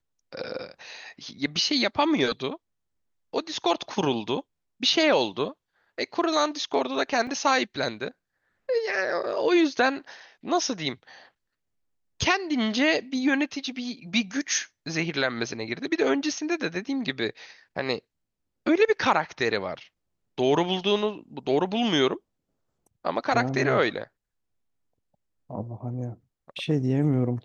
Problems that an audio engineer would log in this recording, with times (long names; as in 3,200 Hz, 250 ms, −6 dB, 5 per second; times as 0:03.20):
0:07.27: drop-out 2.9 ms